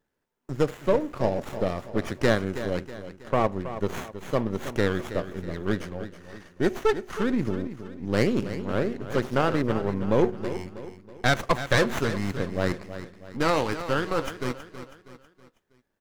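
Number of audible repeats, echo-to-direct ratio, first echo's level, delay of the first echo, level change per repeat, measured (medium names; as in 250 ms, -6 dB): 4, -11.0 dB, -12.0 dB, 322 ms, -7.0 dB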